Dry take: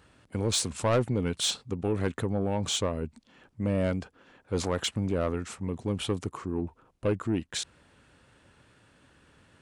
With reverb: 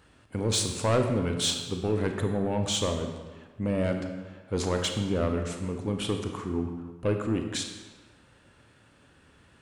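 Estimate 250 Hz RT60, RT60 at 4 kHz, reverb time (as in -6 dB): 1.3 s, 1.0 s, 1.4 s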